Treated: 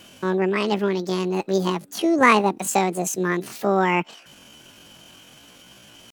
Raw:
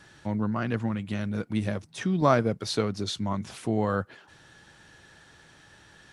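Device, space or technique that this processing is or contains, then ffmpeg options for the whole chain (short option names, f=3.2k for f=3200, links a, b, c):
chipmunk voice: -af "asetrate=78577,aresample=44100,atempo=0.561231,volume=6.5dB"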